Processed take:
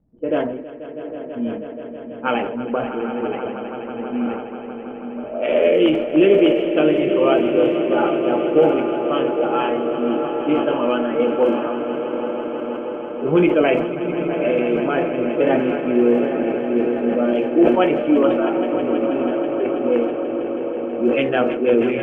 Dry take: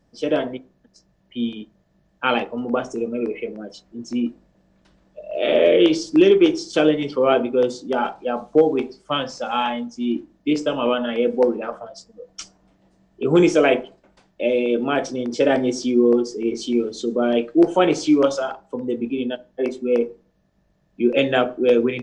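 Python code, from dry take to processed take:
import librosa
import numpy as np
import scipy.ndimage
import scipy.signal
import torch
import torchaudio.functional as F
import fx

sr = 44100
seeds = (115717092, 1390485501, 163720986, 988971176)

p1 = fx.spec_quant(x, sr, step_db=15)
p2 = scipy.signal.sosfilt(scipy.signal.cheby1(6, 1.0, 3000.0, 'lowpass', fs=sr, output='sos'), p1)
p3 = fx.dmg_crackle(p2, sr, seeds[0], per_s=63.0, level_db=-41.0)
p4 = fx.echo_diffused(p3, sr, ms=805, feedback_pct=70, wet_db=-9.5)
p5 = fx.env_lowpass(p4, sr, base_hz=380.0, full_db=-12.5)
p6 = p5 + fx.echo_swell(p5, sr, ms=162, loudest=5, wet_db=-14.0, dry=0)
y = fx.sustainer(p6, sr, db_per_s=57.0)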